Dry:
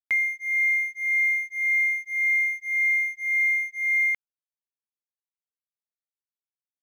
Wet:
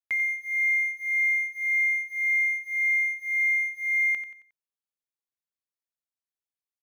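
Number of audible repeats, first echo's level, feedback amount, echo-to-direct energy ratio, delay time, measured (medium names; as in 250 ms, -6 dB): 3, -10.5 dB, 38%, -10.0 dB, 90 ms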